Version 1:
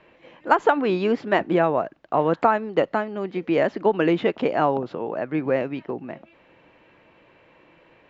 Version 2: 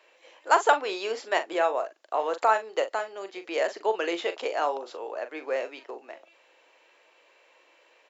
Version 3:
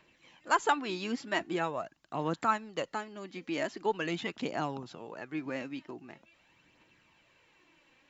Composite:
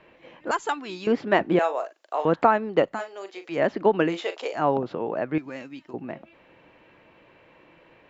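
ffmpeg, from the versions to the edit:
-filter_complex "[2:a]asplit=2[a][b];[1:a]asplit=3[c][d][e];[0:a]asplit=6[f][g][h][i][j][k];[f]atrim=end=0.512[l];[a]atrim=start=0.508:end=1.072[m];[g]atrim=start=1.068:end=1.592[n];[c]atrim=start=1.588:end=2.252[o];[h]atrim=start=2.248:end=3.02[p];[d]atrim=start=2.86:end=3.64[q];[i]atrim=start=3.48:end=4.18[r];[e]atrim=start=4.02:end=4.68[s];[j]atrim=start=4.52:end=5.382[t];[b]atrim=start=5.378:end=5.942[u];[k]atrim=start=5.938[v];[l][m]acrossfade=d=0.004:c1=hsin:c2=hsin[w];[w][n]acrossfade=d=0.004:c1=hsin:c2=hsin[x];[x][o]acrossfade=d=0.004:c1=hsin:c2=hsin[y];[y][p]acrossfade=d=0.004:c1=hsin:c2=hsin[z];[z][q]acrossfade=d=0.16:c1=tri:c2=tri[aa];[aa][r]acrossfade=d=0.16:c1=tri:c2=tri[ab];[ab][s]acrossfade=d=0.16:c1=tri:c2=tri[ac];[ac][t]acrossfade=d=0.16:c1=tri:c2=tri[ad];[ad][u]acrossfade=d=0.004:c1=hsin:c2=hsin[ae];[ae][v]acrossfade=d=0.004:c1=hsin:c2=hsin"

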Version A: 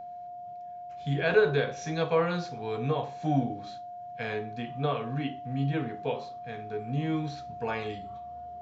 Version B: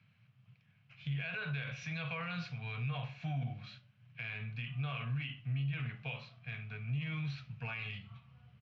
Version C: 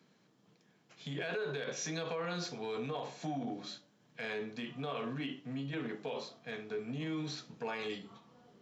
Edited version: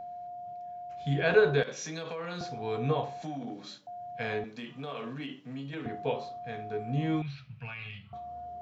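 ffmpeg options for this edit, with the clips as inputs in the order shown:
-filter_complex "[2:a]asplit=3[a][b][c];[0:a]asplit=5[d][e][f][g][h];[d]atrim=end=1.632[i];[a]atrim=start=1.628:end=2.412[j];[e]atrim=start=2.408:end=3.222[k];[b]atrim=start=3.218:end=3.872[l];[f]atrim=start=3.868:end=4.442[m];[c]atrim=start=4.438:end=5.862[n];[g]atrim=start=5.858:end=7.222[o];[1:a]atrim=start=7.218:end=8.132[p];[h]atrim=start=8.128[q];[i][j]acrossfade=d=0.004:c1=hsin:c2=hsin[r];[r][k]acrossfade=d=0.004:c1=hsin:c2=hsin[s];[s][l]acrossfade=d=0.004:c1=hsin:c2=hsin[t];[t][m]acrossfade=d=0.004:c1=hsin:c2=hsin[u];[u][n]acrossfade=d=0.004:c1=hsin:c2=hsin[v];[v][o]acrossfade=d=0.004:c1=hsin:c2=hsin[w];[w][p]acrossfade=d=0.004:c1=hsin:c2=hsin[x];[x][q]acrossfade=d=0.004:c1=hsin:c2=hsin"

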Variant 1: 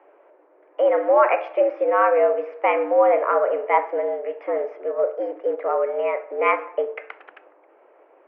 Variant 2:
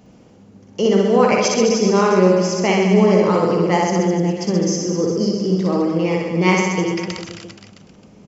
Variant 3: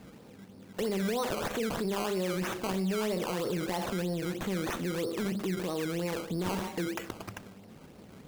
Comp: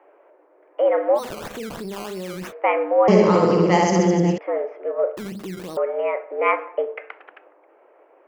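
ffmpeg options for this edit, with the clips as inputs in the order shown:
-filter_complex "[2:a]asplit=2[a][b];[0:a]asplit=4[c][d][e][f];[c]atrim=end=1.2[g];[a]atrim=start=1.14:end=2.53[h];[d]atrim=start=2.47:end=3.082[i];[1:a]atrim=start=3.078:end=4.382[j];[e]atrim=start=4.378:end=5.172[k];[b]atrim=start=5.168:end=5.772[l];[f]atrim=start=5.768[m];[g][h]acrossfade=d=0.06:c1=tri:c2=tri[n];[n][i]acrossfade=d=0.06:c1=tri:c2=tri[o];[o][j]acrossfade=d=0.004:c1=hsin:c2=hsin[p];[p][k]acrossfade=d=0.004:c1=hsin:c2=hsin[q];[q][l]acrossfade=d=0.004:c1=hsin:c2=hsin[r];[r][m]acrossfade=d=0.004:c1=hsin:c2=hsin"

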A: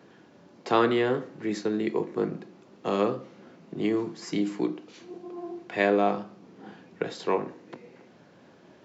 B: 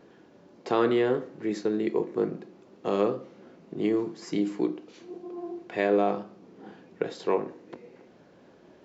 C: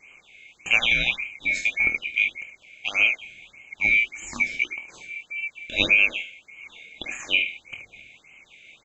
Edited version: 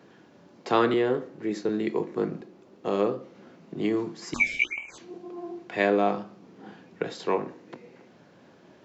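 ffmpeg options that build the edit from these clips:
-filter_complex "[1:a]asplit=2[a][b];[0:a]asplit=4[c][d][e][f];[c]atrim=end=0.942[g];[a]atrim=start=0.938:end=1.692[h];[d]atrim=start=1.688:end=2.412[i];[b]atrim=start=2.408:end=3.352[j];[e]atrim=start=3.348:end=4.342[k];[2:a]atrim=start=4.338:end=4.982[l];[f]atrim=start=4.978[m];[g][h]acrossfade=d=0.004:c1=hsin:c2=hsin[n];[n][i]acrossfade=d=0.004:c1=hsin:c2=hsin[o];[o][j]acrossfade=d=0.004:c1=hsin:c2=hsin[p];[p][k]acrossfade=d=0.004:c1=hsin:c2=hsin[q];[q][l]acrossfade=d=0.004:c1=hsin:c2=hsin[r];[r][m]acrossfade=d=0.004:c1=hsin:c2=hsin"

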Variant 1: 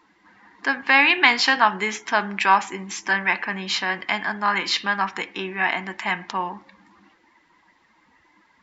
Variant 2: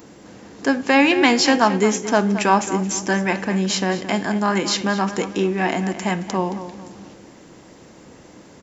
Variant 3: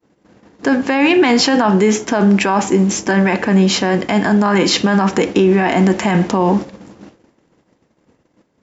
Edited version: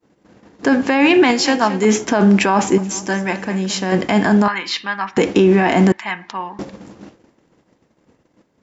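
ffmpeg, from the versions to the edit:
-filter_complex "[1:a]asplit=2[a][b];[0:a]asplit=2[c][d];[2:a]asplit=5[e][f][g][h][i];[e]atrim=end=1.312[j];[a]atrim=start=1.308:end=1.852[k];[f]atrim=start=1.848:end=2.782[l];[b]atrim=start=2.778:end=3.922[m];[g]atrim=start=3.918:end=4.482[n];[c]atrim=start=4.478:end=5.172[o];[h]atrim=start=5.168:end=5.922[p];[d]atrim=start=5.918:end=6.592[q];[i]atrim=start=6.588[r];[j][k]acrossfade=d=0.004:c1=hsin:c2=hsin[s];[s][l]acrossfade=d=0.004:c1=hsin:c2=hsin[t];[t][m]acrossfade=d=0.004:c1=hsin:c2=hsin[u];[u][n]acrossfade=d=0.004:c1=hsin:c2=hsin[v];[v][o]acrossfade=d=0.004:c1=hsin:c2=hsin[w];[w][p]acrossfade=d=0.004:c1=hsin:c2=hsin[x];[x][q]acrossfade=d=0.004:c1=hsin:c2=hsin[y];[y][r]acrossfade=d=0.004:c1=hsin:c2=hsin"

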